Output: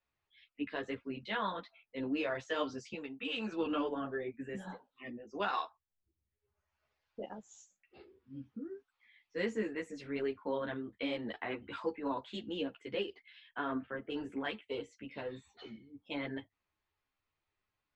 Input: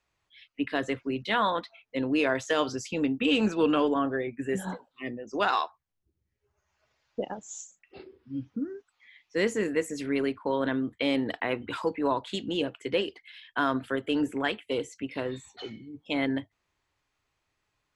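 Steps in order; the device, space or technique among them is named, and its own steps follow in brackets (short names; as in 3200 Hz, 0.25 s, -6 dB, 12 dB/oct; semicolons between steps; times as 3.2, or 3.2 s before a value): 2.94–3.52 low shelf 490 Hz -11 dB; 13.49–14.09 LPF 3700 Hz -> 2000 Hz 24 dB/oct; string-machine ensemble chorus (ensemble effect; LPF 4700 Hz 12 dB/oct); gain -6 dB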